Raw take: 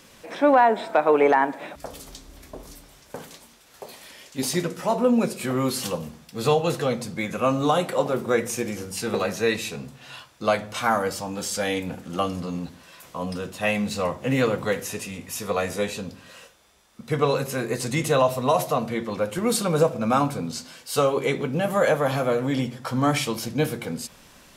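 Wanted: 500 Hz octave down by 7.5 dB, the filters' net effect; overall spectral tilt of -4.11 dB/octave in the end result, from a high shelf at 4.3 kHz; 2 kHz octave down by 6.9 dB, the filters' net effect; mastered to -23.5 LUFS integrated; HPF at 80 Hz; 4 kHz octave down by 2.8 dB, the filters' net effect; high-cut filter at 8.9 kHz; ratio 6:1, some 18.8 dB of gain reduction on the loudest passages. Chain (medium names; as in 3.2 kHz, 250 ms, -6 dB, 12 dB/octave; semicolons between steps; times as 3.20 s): high-pass 80 Hz; low-pass 8.9 kHz; peaking EQ 500 Hz -8.5 dB; peaking EQ 2 kHz -9 dB; peaking EQ 4 kHz -5 dB; treble shelf 4.3 kHz +7.5 dB; compression 6:1, threshold -40 dBFS; trim +19.5 dB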